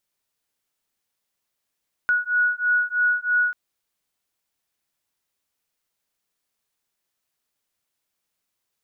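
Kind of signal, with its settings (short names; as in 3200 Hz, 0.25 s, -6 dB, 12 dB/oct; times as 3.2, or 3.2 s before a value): beating tones 1460 Hz, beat 3.1 Hz, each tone -21.5 dBFS 1.44 s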